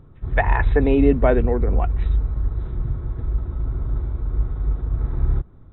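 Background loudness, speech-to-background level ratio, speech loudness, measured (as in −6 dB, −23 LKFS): −25.0 LKFS, 4.0 dB, −21.0 LKFS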